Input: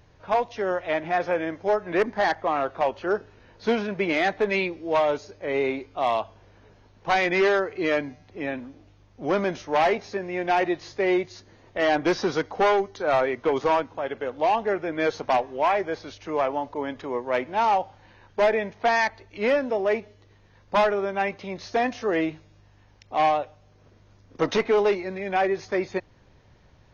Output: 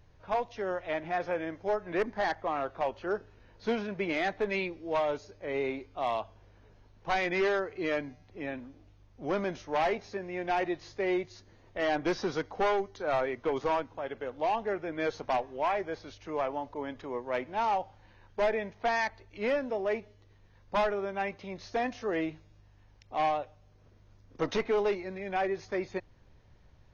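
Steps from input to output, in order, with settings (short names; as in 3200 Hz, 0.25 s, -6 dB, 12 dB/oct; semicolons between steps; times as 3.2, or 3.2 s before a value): low shelf 67 Hz +10.5 dB; gain -7.5 dB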